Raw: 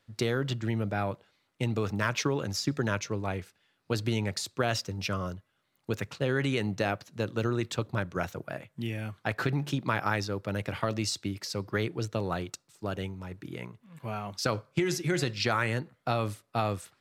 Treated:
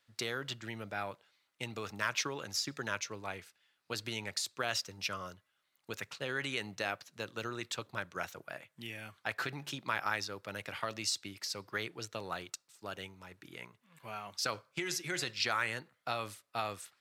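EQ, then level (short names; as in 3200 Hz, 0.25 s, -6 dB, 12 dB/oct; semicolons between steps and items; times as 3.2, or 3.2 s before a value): tilt shelf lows -7 dB, about 660 Hz; low shelf 120 Hz -4.5 dB; -8.0 dB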